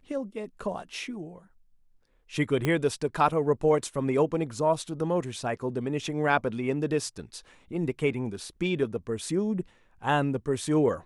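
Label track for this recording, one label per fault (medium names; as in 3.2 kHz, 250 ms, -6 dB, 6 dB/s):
2.650000	2.650000	pop -13 dBFS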